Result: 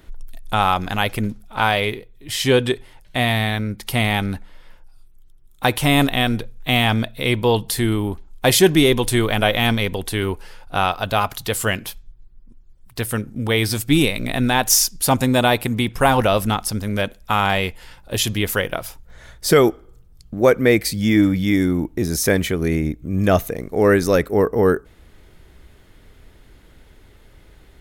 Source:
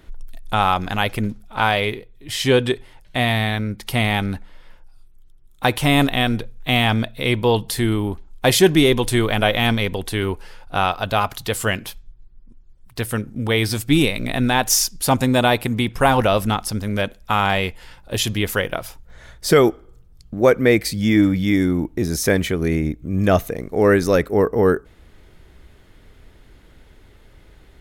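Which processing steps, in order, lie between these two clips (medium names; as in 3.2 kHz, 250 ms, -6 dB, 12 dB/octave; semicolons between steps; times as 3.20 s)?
treble shelf 8.4 kHz +5 dB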